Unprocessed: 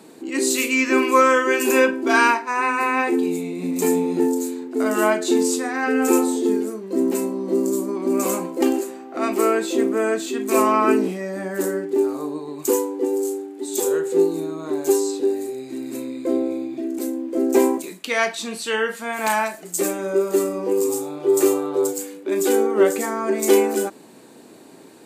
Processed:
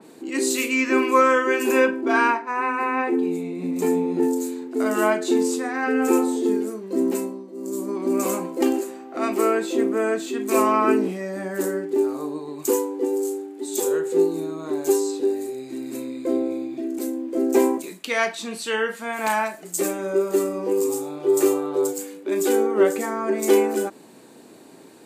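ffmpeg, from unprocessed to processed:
-filter_complex "[0:a]asettb=1/sr,asplit=3[s0][s1][s2];[s0]atrim=end=2.014[s3];[s1]atrim=start=2.01:end=4.23,asetpts=PTS-STARTPTS,afade=t=in:d=0.004:c=qsin,afade=t=out:st=2.216:d=0.004:c=qsin,highshelf=f=3000:g=-9[s4];[s2]atrim=start=4.226[s5];[s3][s4]acrossfade=d=0.004:c1=hsin:c2=qsin[s6];[s6][s5]acrossfade=d=0.004:c1=qsin:c2=hsin,asplit=3[s7][s8][s9];[s7]atrim=end=7.52,asetpts=PTS-STARTPTS,afade=t=out:st=7.13:d=0.39:silence=0.11885[s10];[s8]atrim=start=7.52:end=7.53,asetpts=PTS-STARTPTS,volume=0.119[s11];[s9]atrim=start=7.53,asetpts=PTS-STARTPTS,afade=t=in:d=0.39:silence=0.11885[s12];[s10][s11][s12]concat=n=3:v=0:a=1,adynamicequalizer=threshold=0.0178:dfrequency=3000:dqfactor=0.7:tfrequency=3000:tqfactor=0.7:attack=5:release=100:ratio=0.375:range=3:mode=cutabove:tftype=highshelf,volume=0.841"

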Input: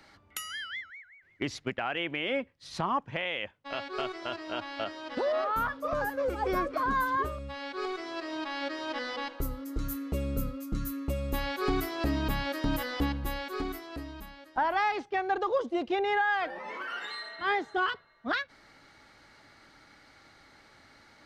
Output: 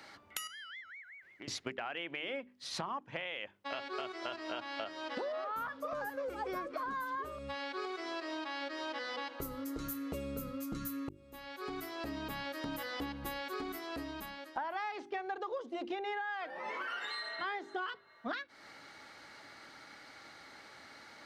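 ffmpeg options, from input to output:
-filter_complex "[0:a]asettb=1/sr,asplit=3[s0][s1][s2];[s0]atrim=end=0.474[s3];[s1]atrim=start=0.47:end=1.48,asetpts=PTS-STARTPTS,afade=t=in:d=0.004:c=qsin,afade=t=out:st=1.006:d=0.004:c=qsin,acompressor=threshold=0.002:ratio=3:attack=3.2:release=140:knee=1:detection=peak[s4];[s2]atrim=start=1.476[s5];[s3][s4]acrossfade=d=0.004:c1=hsin:c2=qsin[s6];[s6][s5]acrossfade=d=0.004:c1=qsin:c2=hsin,asplit=2[s7][s8];[s7]atrim=end=11.09,asetpts=PTS-STARTPTS,afade=t=out:st=11.086:d=0.004:c=hsin[s9];[s8]atrim=start=11.09,asetpts=PTS-STARTPTS,afade=t=in:d=2.67[s10];[s9][s10]concat=n=2:v=0:a=1,highpass=f=240:p=1,bandreject=f=50:t=h:w=6,bandreject=f=100:t=h:w=6,bandreject=f=150:t=h:w=6,bandreject=f=200:t=h:w=6,bandreject=f=250:t=h:w=6,bandreject=f=300:t=h:w=6,bandreject=f=350:t=h:w=6,bandreject=f=400:t=h:w=6,acompressor=threshold=0.00891:ratio=6,volume=1.58"

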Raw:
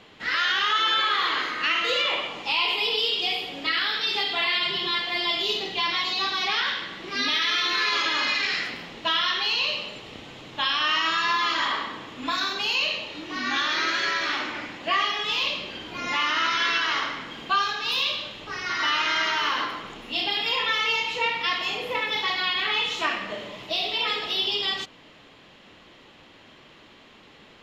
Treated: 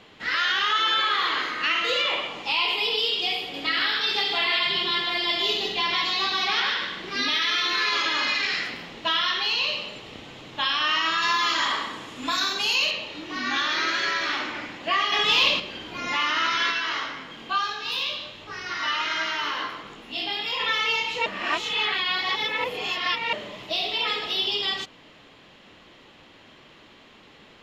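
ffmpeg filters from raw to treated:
-filter_complex "[0:a]asettb=1/sr,asplit=3[s0][s1][s2];[s0]atrim=end=3.394[s3];[s1]atrim=start=3.39:end=7.24,asetpts=PTS-STARTPTS,afade=t=in:d=0.004:c=qsin,afade=t=out:st=3.846:d=0.004:c=qsin,aecho=1:1:149:0.562,atrim=end_sample=169785[s4];[s2]atrim=start=7.236[s5];[s3][s4]acrossfade=d=0.004:c1=hsin:c2=qsin[s6];[s6][s5]acrossfade=d=0.004:c1=qsin:c2=hsin,asettb=1/sr,asplit=3[s7][s8][s9];[s7]atrim=end=11.224[s10];[s8]atrim=start=11.22:end=12.91,asetpts=PTS-STARTPTS,afade=t=in:d=0.004:c=qsin,afade=t=out:st=1.686:d=0.004:c=qsin,equalizer=f=9400:t=o:w=1.1:g=13[s11];[s9]atrim=start=12.906[s12];[s10][s11]acrossfade=d=0.004:c1=hsin:c2=qsin[s13];[s13][s12]acrossfade=d=0.004:c1=qsin:c2=hsin,asettb=1/sr,asplit=3[s14][s15][s16];[s14]atrim=end=15.124[s17];[s15]atrim=start=15.12:end=15.6,asetpts=PTS-STARTPTS,afade=t=in:d=0.004:c=qsin,afade=t=out:st=0.476:d=0.004:c=qsin,acontrast=58[s18];[s16]atrim=start=15.596[s19];[s17][s18]acrossfade=d=0.004:c1=hsin:c2=qsin[s20];[s20][s19]acrossfade=d=0.004:c1=qsin:c2=hsin,asplit=3[s21][s22][s23];[s21]afade=t=out:st=16.7:d=0.02[s24];[s22]flanger=delay=18.5:depth=3.5:speed=1.4,afade=t=in:st=16.7:d=0.02,afade=t=out:st=20.59:d=0.02[s25];[s23]afade=t=in:st=20.59:d=0.02[s26];[s24][s25][s26]amix=inputs=3:normalize=0,asplit=3[s27][s28][s29];[s27]atrim=end=21.262[s30];[s28]atrim=start=21.258:end=23.332,asetpts=PTS-STARTPTS,areverse[s31];[s29]atrim=start=23.328[s32];[s30][s31]acrossfade=d=0.004:c1=hsin:c2=hsin[s33];[s33][s32]acrossfade=d=0.004:c1=hsin:c2=hsin"

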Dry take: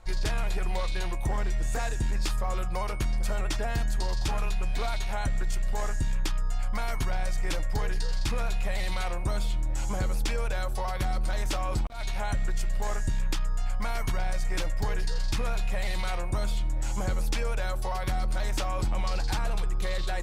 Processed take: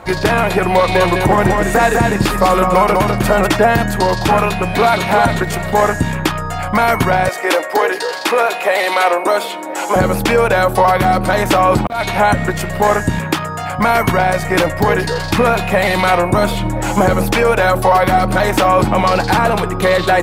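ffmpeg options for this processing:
-filter_complex "[0:a]asplit=3[s0][s1][s2];[s0]afade=t=out:st=0.87:d=0.02[s3];[s1]aecho=1:1:200:0.596,afade=t=in:st=0.87:d=0.02,afade=t=out:st=3.46:d=0.02[s4];[s2]afade=t=in:st=3.46:d=0.02[s5];[s3][s4][s5]amix=inputs=3:normalize=0,asplit=2[s6][s7];[s7]afade=t=in:st=4.44:d=0.01,afade=t=out:st=5.04:d=0.01,aecho=0:1:360|720|1080:0.562341|0.140585|0.0351463[s8];[s6][s8]amix=inputs=2:normalize=0,asettb=1/sr,asplit=3[s9][s10][s11];[s9]atrim=end=7.284[s12];[s10]atrim=start=7.28:end=9.96,asetpts=PTS-STARTPTS,afade=t=in:d=0.004:c=qsin,afade=t=out:st=2.676:d=0.004:c=qsin,highpass=f=350:w=0.5412,highpass=f=350:w=1.3066[s13];[s11]atrim=start=9.956[s14];[s12][s13]acrossfade=d=0.004:c1=hsin:c2=qsin[s15];[s15][s14]acrossfade=d=0.004:c1=qsin:c2=hsin,asettb=1/sr,asplit=3[s16][s17][s18];[s16]atrim=end=13.184[s19];[s17]atrim=start=13.18:end=13.79,asetpts=PTS-STARTPTS,afade=t=in:d=0.004:c=qsin,afade=t=out:st=0.606:d=0.004:c=qsin,highpass=110[s20];[s18]atrim=start=13.786[s21];[s19][s20]acrossfade=d=0.004:c1=hsin:c2=qsin[s22];[s22][s21]acrossfade=d=0.004:c1=qsin:c2=hsin,asplit=3[s23][s24][s25];[s23]afade=t=out:st=16.37:d=0.02[s26];[s24]aphaser=in_gain=1:out_gain=1:delay=4.1:decay=0.27:speed=1.8:type=triangular,afade=t=in:st=16.37:d=0.02,afade=t=out:st=18.67:d=0.02[s27];[s25]afade=t=in:st=18.67:d=0.02[s28];[s26][s27][s28]amix=inputs=3:normalize=0,highpass=160,equalizer=f=6200:t=o:w=2.1:g=-13,alimiter=level_in=18.8:limit=0.891:release=50:level=0:latency=1,volume=0.891"

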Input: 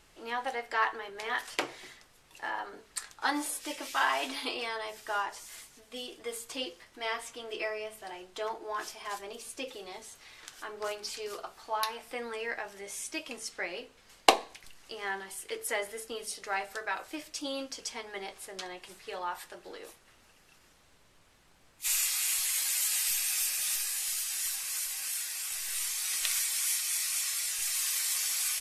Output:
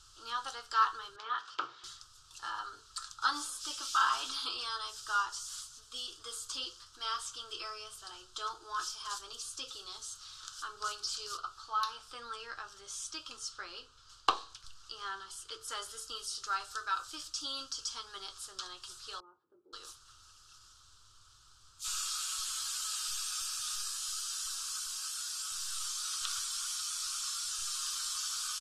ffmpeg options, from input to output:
-filter_complex "[0:a]asettb=1/sr,asplit=3[s0][s1][s2];[s0]atrim=end=1.164[s3];[s1]atrim=start=1.16:end=1.84,asetpts=PTS-STARTPTS,afade=t=in:d=0.004:c=qsin,afade=t=out:st=0.676:d=0.004:c=qsin,highpass=220,lowpass=2300[s4];[s2]atrim=start=1.836[s5];[s3][s4]acrossfade=d=0.004:c1=hsin:c2=qsin[s6];[s6][s5]acrossfade=d=0.004:c1=qsin:c2=hsin,asettb=1/sr,asplit=3[s7][s8][s9];[s7]atrim=end=11.374[s10];[s8]atrim=start=11.37:end=15.68,asetpts=PTS-STARTPTS,afade=t=in:d=0.004:c=qsin,afade=t=out:st=4.306:d=0.004:c=qsin,highshelf=f=5500:g=-10[s11];[s9]atrim=start=15.676[s12];[s10][s11]acrossfade=d=0.004:c1=hsin:c2=qsin[s13];[s13][s12]acrossfade=d=0.004:c1=qsin:c2=hsin,asettb=1/sr,asplit=3[s14][s15][s16];[s14]atrim=end=19.204[s17];[s15]atrim=start=19.2:end=19.73,asetpts=PTS-STARTPTS,afade=t=in:d=0.004:c=qsin,afade=t=out:st=0.526:d=0.004:c=qsin,asuperpass=centerf=300:order=4:qfactor=1.3[s18];[s16]atrim=start=19.726[s19];[s17][s18]acrossfade=d=0.004:c1=hsin:c2=qsin[s20];[s20][s19]acrossfade=d=0.004:c1=qsin:c2=hsin,acrossover=split=2700[s21][s22];[s22]acompressor=threshold=0.00891:ratio=4:attack=1:release=60[s23];[s21][s23]amix=inputs=2:normalize=0,firequalizer=gain_entry='entry(120,0);entry(180,-22);entry(330,-14);entry(660,-21);entry(1300,7);entry(2000,-23);entry(3100,1);entry(4900,7);entry(7700,4);entry(13000,-10)':delay=0.05:min_phase=1,volume=1.26"

